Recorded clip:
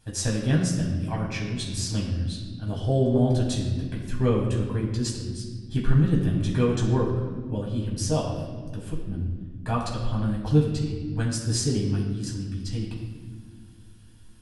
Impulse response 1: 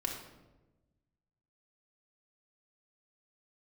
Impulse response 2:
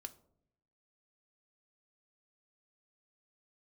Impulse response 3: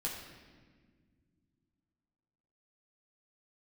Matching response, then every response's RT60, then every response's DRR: 3; 1.1, 0.70, 1.7 seconds; −1.0, 7.0, −3.5 decibels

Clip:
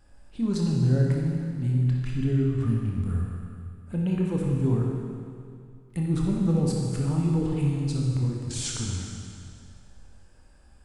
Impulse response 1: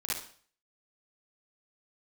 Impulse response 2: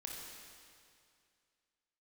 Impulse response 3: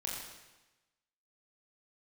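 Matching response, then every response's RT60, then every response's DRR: 2; non-exponential decay, 2.3 s, 1.1 s; −8.0, −2.0, −3.5 decibels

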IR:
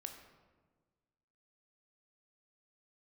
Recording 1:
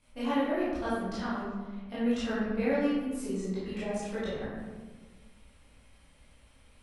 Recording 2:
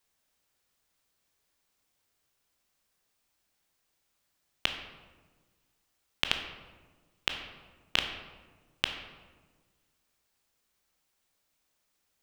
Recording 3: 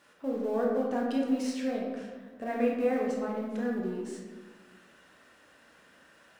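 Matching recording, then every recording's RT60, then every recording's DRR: 2; 1.4, 1.4, 1.4 seconds; −12.5, 4.5, −2.5 decibels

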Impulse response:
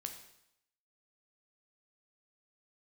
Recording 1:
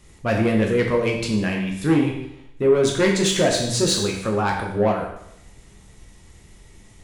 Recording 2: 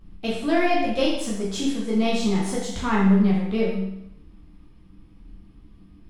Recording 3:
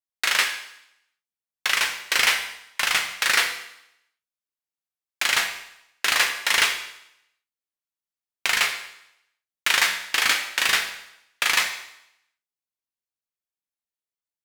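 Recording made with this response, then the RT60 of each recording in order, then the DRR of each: 3; 0.80, 0.80, 0.80 seconds; 0.0, −5.5, 4.5 decibels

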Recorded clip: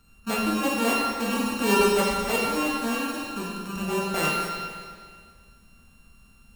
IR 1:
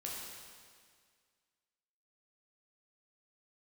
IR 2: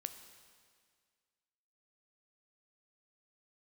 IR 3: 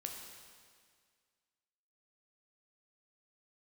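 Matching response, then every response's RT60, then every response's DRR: 1; 1.9, 1.9, 1.9 seconds; −4.5, 8.5, 1.5 decibels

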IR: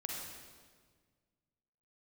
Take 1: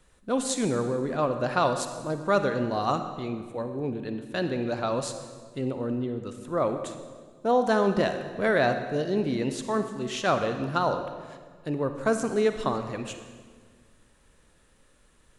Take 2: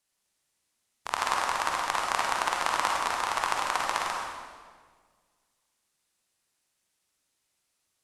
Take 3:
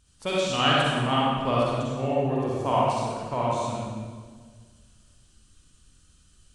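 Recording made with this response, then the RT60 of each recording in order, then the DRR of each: 2; 1.6, 1.6, 1.6 seconds; 7.5, −1.5, −6.5 decibels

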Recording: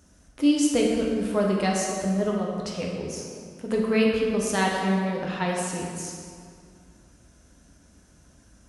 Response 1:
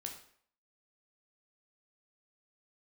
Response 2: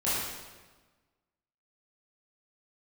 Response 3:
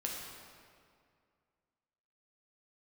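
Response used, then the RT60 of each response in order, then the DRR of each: 3; 0.60, 1.3, 2.2 seconds; 2.0, −11.5, −2.5 decibels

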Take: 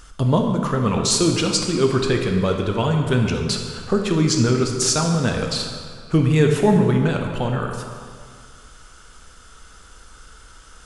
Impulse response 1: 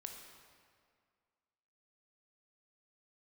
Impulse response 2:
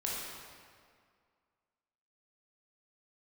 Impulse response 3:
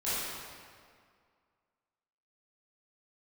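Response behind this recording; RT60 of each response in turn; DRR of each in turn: 1; 2.0, 2.0, 2.0 seconds; 2.5, −5.0, −13.5 decibels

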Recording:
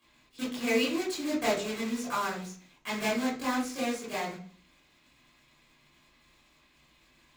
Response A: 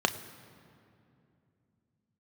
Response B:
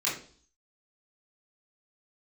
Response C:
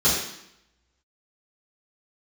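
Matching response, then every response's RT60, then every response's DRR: B; 2.7, 0.45, 0.75 seconds; 8.0, −7.5, −10.5 decibels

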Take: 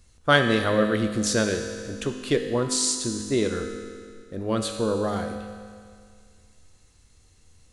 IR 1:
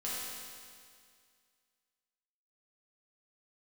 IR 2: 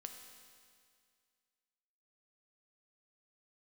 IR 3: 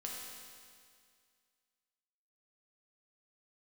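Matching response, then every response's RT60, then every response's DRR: 2; 2.1, 2.1, 2.1 seconds; −8.5, 4.0, −3.0 decibels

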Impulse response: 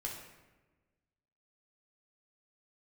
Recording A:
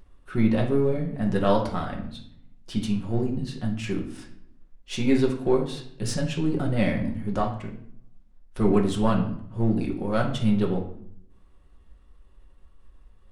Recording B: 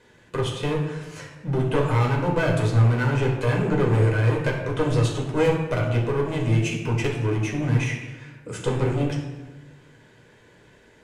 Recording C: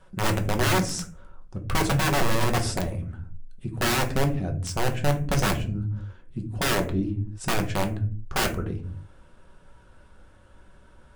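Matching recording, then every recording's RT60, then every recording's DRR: B; 0.65, 1.2, 0.45 seconds; −1.0, −2.0, 3.0 decibels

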